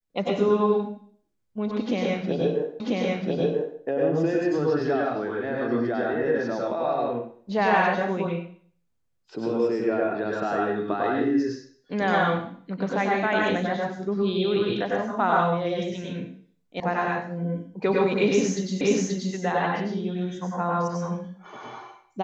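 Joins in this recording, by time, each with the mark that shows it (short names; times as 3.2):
2.8 repeat of the last 0.99 s
16.8 sound cut off
18.81 repeat of the last 0.53 s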